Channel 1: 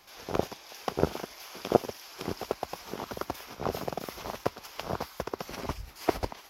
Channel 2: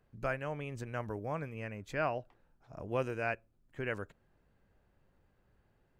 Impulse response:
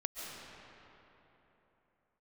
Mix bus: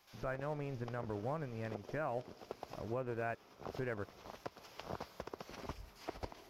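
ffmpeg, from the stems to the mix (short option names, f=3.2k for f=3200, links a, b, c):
-filter_complex "[0:a]acrossover=split=6700[a][b];[b]acompressor=threshold=-58dB:ratio=4:attack=1:release=60[c];[a][c]amix=inputs=2:normalize=0,volume=-12dB,asplit=2[d][e];[e]volume=-15.5dB[f];[1:a]lowpass=1.5k,aeval=exprs='sgn(val(0))*max(abs(val(0))-0.00158,0)':c=same,volume=1dB,asplit=2[g][h];[h]apad=whole_len=286631[i];[d][i]sidechaincompress=threshold=-45dB:ratio=8:attack=9.4:release=469[j];[2:a]atrim=start_sample=2205[k];[f][k]afir=irnorm=-1:irlink=0[l];[j][g][l]amix=inputs=3:normalize=0,alimiter=level_in=4.5dB:limit=-24dB:level=0:latency=1:release=138,volume=-4.5dB"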